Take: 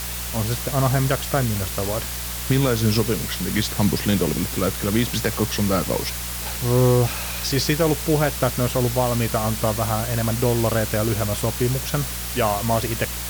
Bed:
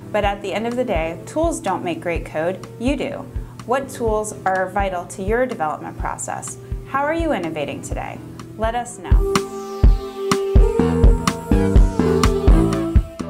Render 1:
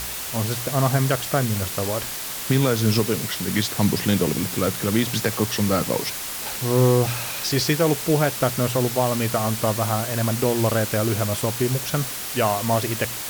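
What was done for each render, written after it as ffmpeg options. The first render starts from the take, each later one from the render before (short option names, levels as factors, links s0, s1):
-af "bandreject=f=60:t=h:w=4,bandreject=f=120:t=h:w=4,bandreject=f=180:t=h:w=4"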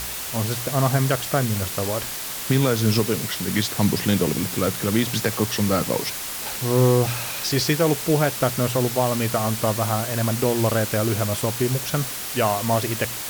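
-af anull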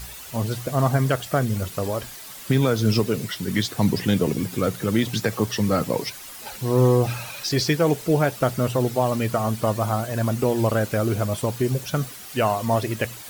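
-af "afftdn=nr=11:nf=-31"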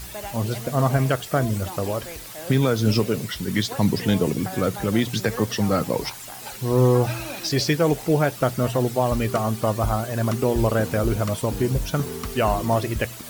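-filter_complex "[1:a]volume=0.15[s0];[0:a][s0]amix=inputs=2:normalize=0"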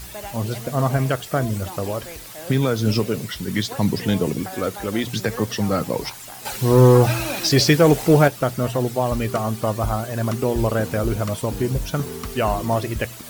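-filter_complex "[0:a]asettb=1/sr,asplit=3[s0][s1][s2];[s0]atrim=end=4.424[s3];[s1]atrim=start=4.42:end=5.04,asetpts=PTS-STARTPTS,afade=t=in:d=0.004:c=qsin,afade=t=out:st=0.616:d=0.004:c=qsin,equalizer=f=140:t=o:w=0.77:g=-13.5[s4];[s2]atrim=start=5.036[s5];[s3][s4]acrossfade=d=0.004:c1=hsin:c2=qsin[s6];[s6][s5]acrossfade=d=0.004:c1=qsin:c2=hsin,asettb=1/sr,asplit=3[s7][s8][s9];[s7]atrim=end=6.454[s10];[s8]atrim=start=6.45:end=8.28,asetpts=PTS-STARTPTS,afade=t=in:d=0.004:c=qsin,afade=t=out:st=1.826:d=0.004:c=qsin,acontrast=66[s11];[s9]atrim=start=8.276[s12];[s10][s11]acrossfade=d=0.004:c1=hsin:c2=qsin[s13];[s13][s12]acrossfade=d=0.004:c1=qsin:c2=hsin"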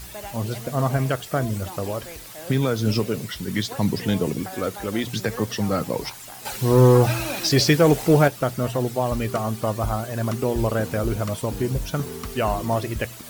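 -af "volume=0.794"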